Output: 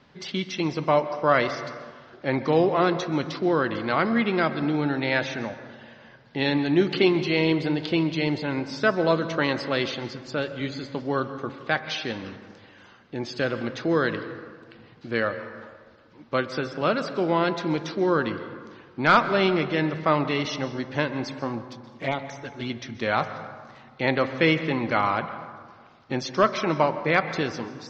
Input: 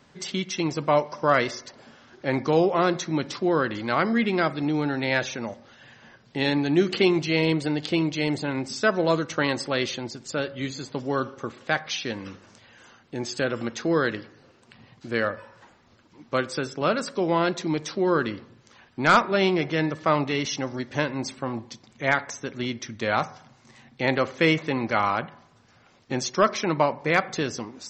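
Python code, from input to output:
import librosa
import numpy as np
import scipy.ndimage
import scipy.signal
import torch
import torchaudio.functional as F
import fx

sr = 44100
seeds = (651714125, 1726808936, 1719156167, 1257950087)

y = scipy.signal.sosfilt(scipy.signal.butter(4, 4900.0, 'lowpass', fs=sr, output='sos'), x)
y = fx.env_flanger(y, sr, rest_ms=9.3, full_db=-22.0, at=(21.65, 22.7))
y = fx.rev_plate(y, sr, seeds[0], rt60_s=1.7, hf_ratio=0.45, predelay_ms=115, drr_db=11.5)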